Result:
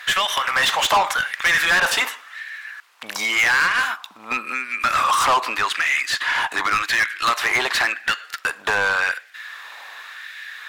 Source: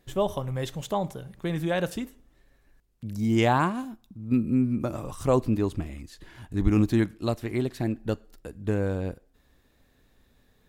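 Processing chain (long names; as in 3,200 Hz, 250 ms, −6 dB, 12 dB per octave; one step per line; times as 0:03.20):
high-pass filter 72 Hz 24 dB per octave
parametric band 2,200 Hz +8 dB 2.5 octaves
downward compressor 12 to 1, threshold −25 dBFS, peak gain reduction 12.5 dB
auto-filter high-pass sine 0.89 Hz 890–1,800 Hz
mid-hump overdrive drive 26 dB, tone 5,500 Hz, clips at −14 dBFS
level +5 dB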